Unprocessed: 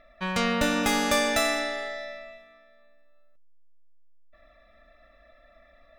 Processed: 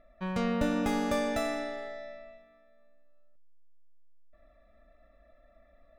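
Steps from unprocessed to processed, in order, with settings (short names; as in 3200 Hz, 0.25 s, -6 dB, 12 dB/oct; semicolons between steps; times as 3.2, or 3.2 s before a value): tilt shelf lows +7 dB, about 1100 Hz; gain -8 dB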